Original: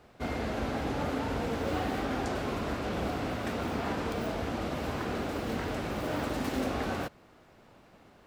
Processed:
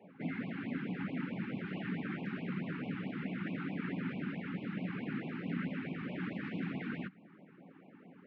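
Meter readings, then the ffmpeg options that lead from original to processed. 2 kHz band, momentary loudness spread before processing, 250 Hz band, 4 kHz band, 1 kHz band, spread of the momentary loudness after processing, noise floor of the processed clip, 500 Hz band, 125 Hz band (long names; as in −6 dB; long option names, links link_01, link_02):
−5.0 dB, 2 LU, −3.0 dB, −12.5 dB, −15.5 dB, 11 LU, −59 dBFS, −14.0 dB, −4.0 dB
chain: -filter_complex "[0:a]acrossover=split=220|1400[link_01][link_02][link_03];[link_01]alimiter=level_in=12.5dB:limit=-24dB:level=0:latency=1:release=34,volume=-12.5dB[link_04];[link_02]acompressor=threshold=-50dB:ratio=12[link_05];[link_04][link_05][link_03]amix=inputs=3:normalize=0,afftfilt=real='hypot(re,im)*cos(2*PI*random(0))':imag='hypot(re,im)*sin(2*PI*random(1))':win_size=512:overlap=0.75,highpass=frequency=150:width=0.5412,highpass=frequency=150:width=1.3066,equalizer=frequency=180:width_type=q:width=4:gain=9,equalizer=frequency=260:width_type=q:width=4:gain=6,equalizer=frequency=1000:width_type=q:width=4:gain=-8,lowpass=frequency=2300:width=0.5412,lowpass=frequency=2300:width=1.3066,afftfilt=real='re*(1-between(b*sr/1024,540*pow(1600/540,0.5+0.5*sin(2*PI*4.6*pts/sr))/1.41,540*pow(1600/540,0.5+0.5*sin(2*PI*4.6*pts/sr))*1.41))':imag='im*(1-between(b*sr/1024,540*pow(1600/540,0.5+0.5*sin(2*PI*4.6*pts/sr))/1.41,540*pow(1600/540,0.5+0.5*sin(2*PI*4.6*pts/sr))*1.41))':win_size=1024:overlap=0.75,volume=6.5dB"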